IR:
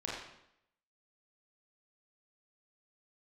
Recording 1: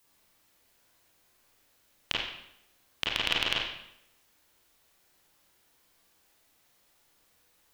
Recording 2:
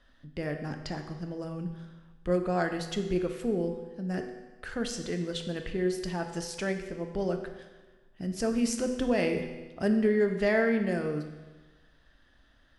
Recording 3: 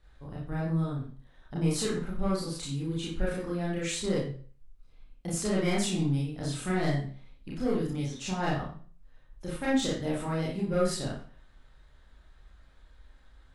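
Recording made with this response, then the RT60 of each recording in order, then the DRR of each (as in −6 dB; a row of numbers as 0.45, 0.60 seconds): 1; 0.75, 1.3, 0.45 seconds; −5.5, 5.0, −6.0 decibels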